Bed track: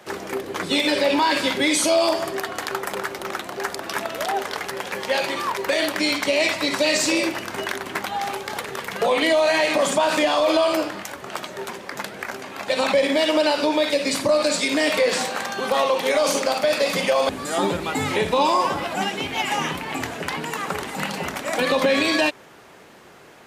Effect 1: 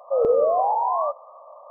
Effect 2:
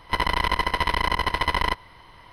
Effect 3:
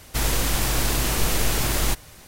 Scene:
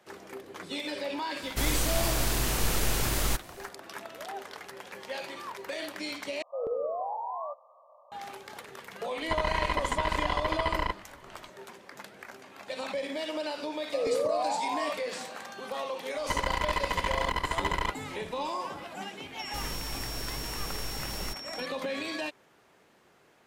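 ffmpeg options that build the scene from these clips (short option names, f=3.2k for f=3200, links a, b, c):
-filter_complex "[3:a]asplit=2[a][b];[1:a]asplit=2[c][d];[2:a]asplit=2[e][f];[0:a]volume=-15dB[g];[e]lowpass=f=2.1k:p=1[h];[f]asoftclip=type=hard:threshold=-12dB[i];[b]aeval=exprs='val(0)+0.0562*sin(2*PI*5500*n/s)':c=same[j];[g]asplit=2[k][l];[k]atrim=end=6.424[m];[c]atrim=end=1.7,asetpts=PTS-STARTPTS,volume=-13dB[n];[l]atrim=start=8.116[o];[a]atrim=end=2.27,asetpts=PTS-STARTPTS,volume=-5.5dB,afade=t=in:d=0.004:c=hsin,afade=t=out:st=2.266:d=0.004:c=hsin,adelay=1420[p];[h]atrim=end=2.32,asetpts=PTS-STARTPTS,volume=-5.5dB,afade=t=in:d=0.004:c=hsin,afade=t=out:st=2.316:d=0.004:c=hsin,adelay=9180[q];[d]atrim=end=1.7,asetpts=PTS-STARTPTS,volume=-9.5dB,afade=t=in:d=0.004:c=hsin,afade=t=out:st=1.696:d=0.004:c=hsin,adelay=13820[r];[i]atrim=end=2.32,asetpts=PTS-STARTPTS,volume=-6dB,afade=t=in:d=0.004:c=hsin,afade=t=out:st=2.316:d=0.004:c=hsin,adelay=16170[s];[j]atrim=end=2.27,asetpts=PTS-STARTPTS,volume=-15dB,afade=t=in:d=0.004:c=hsin,afade=t=out:st=2.266:d=0.004:c=hsin,adelay=19390[t];[m][n]acrossfade=d=0.004:c1=hsin:c2=hsin[u];[u][o]acrossfade=d=0.004:c1=hsin:c2=hsin[v];[v][p][q][r][s][t]amix=inputs=6:normalize=0"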